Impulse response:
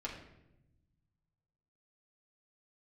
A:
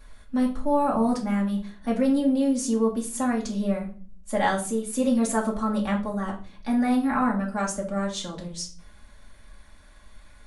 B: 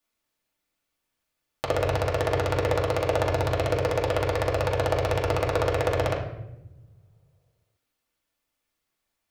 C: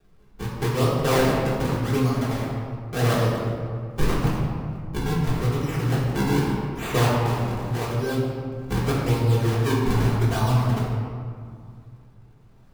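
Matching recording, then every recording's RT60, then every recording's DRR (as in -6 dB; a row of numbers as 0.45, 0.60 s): B; 0.40, 0.90, 2.2 s; -3.0, -4.0, -8.0 dB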